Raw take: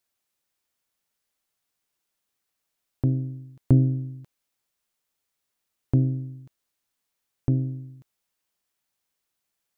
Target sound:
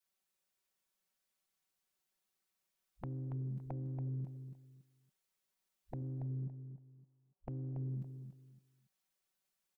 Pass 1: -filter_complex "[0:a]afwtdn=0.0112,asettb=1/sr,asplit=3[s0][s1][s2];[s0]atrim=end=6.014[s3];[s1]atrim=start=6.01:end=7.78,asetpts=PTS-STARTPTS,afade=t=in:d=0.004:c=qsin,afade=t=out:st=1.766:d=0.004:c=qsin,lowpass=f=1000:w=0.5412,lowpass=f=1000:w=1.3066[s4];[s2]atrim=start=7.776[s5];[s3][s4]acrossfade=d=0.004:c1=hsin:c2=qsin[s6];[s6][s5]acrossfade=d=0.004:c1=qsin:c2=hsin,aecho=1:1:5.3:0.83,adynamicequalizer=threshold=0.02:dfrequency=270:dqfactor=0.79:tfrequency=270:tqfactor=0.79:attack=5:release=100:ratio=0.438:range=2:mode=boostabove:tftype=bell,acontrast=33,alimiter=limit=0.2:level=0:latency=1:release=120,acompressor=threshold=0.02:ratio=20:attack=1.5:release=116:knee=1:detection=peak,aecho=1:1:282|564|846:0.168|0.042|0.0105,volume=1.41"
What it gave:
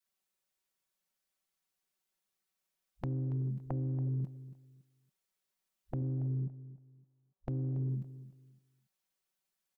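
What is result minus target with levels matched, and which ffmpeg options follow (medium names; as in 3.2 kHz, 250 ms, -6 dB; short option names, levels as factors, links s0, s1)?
compression: peak gain reduction -7 dB; echo-to-direct -7 dB
-filter_complex "[0:a]afwtdn=0.0112,asettb=1/sr,asplit=3[s0][s1][s2];[s0]atrim=end=6.014[s3];[s1]atrim=start=6.01:end=7.78,asetpts=PTS-STARTPTS,afade=t=in:d=0.004:c=qsin,afade=t=out:st=1.766:d=0.004:c=qsin,lowpass=f=1000:w=0.5412,lowpass=f=1000:w=1.3066[s4];[s2]atrim=start=7.776[s5];[s3][s4]acrossfade=d=0.004:c1=hsin:c2=qsin[s6];[s6][s5]acrossfade=d=0.004:c1=qsin:c2=hsin,aecho=1:1:5.3:0.83,adynamicequalizer=threshold=0.02:dfrequency=270:dqfactor=0.79:tfrequency=270:tqfactor=0.79:attack=5:release=100:ratio=0.438:range=2:mode=boostabove:tftype=bell,acontrast=33,alimiter=limit=0.2:level=0:latency=1:release=120,acompressor=threshold=0.00841:ratio=20:attack=1.5:release=116:knee=1:detection=peak,aecho=1:1:282|564|846:0.376|0.094|0.0235,volume=1.41"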